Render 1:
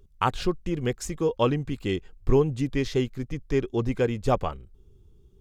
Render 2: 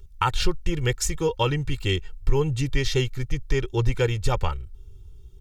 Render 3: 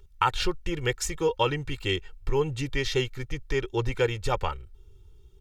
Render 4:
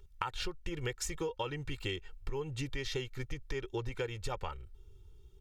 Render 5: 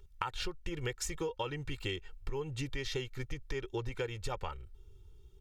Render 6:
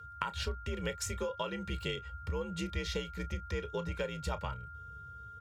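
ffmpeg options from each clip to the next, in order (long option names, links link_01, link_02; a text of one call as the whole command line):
ffmpeg -i in.wav -af "equalizer=frequency=440:width=0.63:gain=-11.5,aecho=1:1:2.2:0.73,alimiter=limit=-17dB:level=0:latency=1:release=177,volume=7.5dB" out.wav
ffmpeg -i in.wav -af "bass=frequency=250:gain=-8,treble=frequency=4000:gain=-5" out.wav
ffmpeg -i in.wav -af "acompressor=threshold=-29dB:ratio=10,volume=-3.5dB" out.wav
ffmpeg -i in.wav -af anull out.wav
ffmpeg -i in.wav -filter_complex "[0:a]afreqshift=53,asplit=2[link_01][link_02];[link_02]adelay=31,volume=-14dB[link_03];[link_01][link_03]amix=inputs=2:normalize=0,aeval=exprs='val(0)+0.00447*sin(2*PI*1400*n/s)':channel_layout=same" out.wav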